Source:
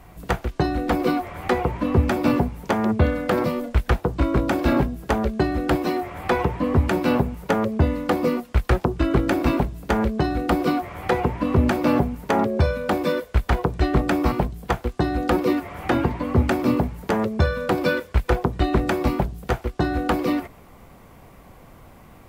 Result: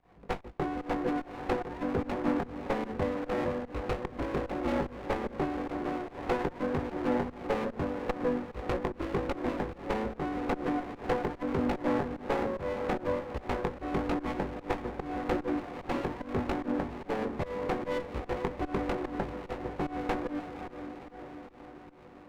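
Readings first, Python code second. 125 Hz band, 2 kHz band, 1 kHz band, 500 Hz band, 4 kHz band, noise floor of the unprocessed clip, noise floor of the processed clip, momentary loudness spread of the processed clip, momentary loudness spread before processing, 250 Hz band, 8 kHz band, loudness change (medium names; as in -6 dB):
-16.5 dB, -11.0 dB, -9.0 dB, -8.5 dB, -12.5 dB, -48 dBFS, -51 dBFS, 6 LU, 4 LU, -10.5 dB, under -10 dB, -11.0 dB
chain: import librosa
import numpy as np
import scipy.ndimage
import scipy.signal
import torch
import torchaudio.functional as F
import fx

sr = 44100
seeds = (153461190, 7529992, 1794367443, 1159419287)

y = fx.low_shelf(x, sr, hz=280.0, db=-10.5)
y = fx.notch(y, sr, hz=650.0, q=12.0)
y = fx.doubler(y, sr, ms=20.0, db=-6.5)
y = fx.echo_diffused(y, sr, ms=533, feedback_pct=61, wet_db=-9.5)
y = fx.volume_shaper(y, sr, bpm=148, per_beat=1, depth_db=-20, release_ms=151.0, shape='fast start')
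y = scipy.signal.sosfilt(scipy.signal.butter(4, 1700.0, 'lowpass', fs=sr, output='sos'), y)
y = fx.low_shelf(y, sr, hz=97.0, db=-8.0)
y = fx.running_max(y, sr, window=17)
y = F.gain(torch.from_numpy(y), -5.5).numpy()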